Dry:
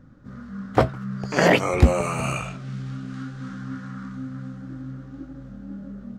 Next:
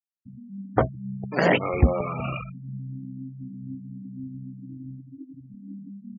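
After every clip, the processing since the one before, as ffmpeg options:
ffmpeg -i in.wav -af "afftfilt=real='re*gte(hypot(re,im),0.0708)':imag='im*gte(hypot(re,im),0.0708)':win_size=1024:overlap=0.75,volume=-3dB" out.wav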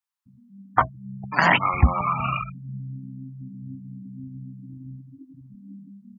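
ffmpeg -i in.wav -filter_complex "[0:a]lowshelf=frequency=680:width_type=q:width=3:gain=-13,acrossover=split=290|390|3500[link_01][link_02][link_03][link_04];[link_01]dynaudnorm=framelen=440:gausssize=5:maxgain=11dB[link_05];[link_05][link_02][link_03][link_04]amix=inputs=4:normalize=0,volume=4dB" out.wav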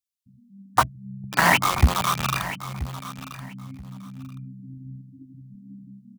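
ffmpeg -i in.wav -filter_complex "[0:a]acrossover=split=340|2400[link_01][link_02][link_03];[link_02]acrusher=bits=3:mix=0:aa=0.000001[link_04];[link_01][link_04][link_03]amix=inputs=3:normalize=0,aecho=1:1:981|1962:0.2|0.0399" out.wav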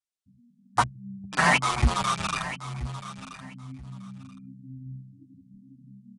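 ffmpeg -i in.wav -filter_complex "[0:a]aresample=22050,aresample=44100,asplit=2[link_01][link_02];[link_02]adelay=6.9,afreqshift=-0.96[link_03];[link_01][link_03]amix=inputs=2:normalize=1" out.wav

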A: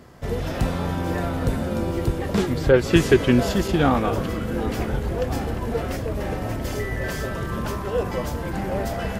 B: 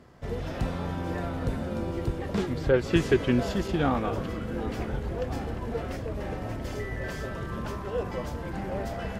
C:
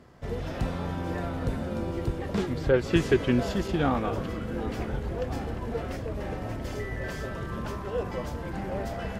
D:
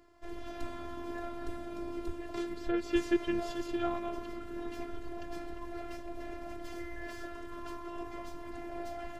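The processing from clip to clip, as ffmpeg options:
ffmpeg -i in.wav -af "highshelf=frequency=8800:gain=-11,volume=-6.5dB" out.wav
ffmpeg -i in.wav -af anull out.wav
ffmpeg -i in.wav -af "afftfilt=real='hypot(re,im)*cos(PI*b)':imag='0':win_size=512:overlap=0.75,volume=-4dB" out.wav

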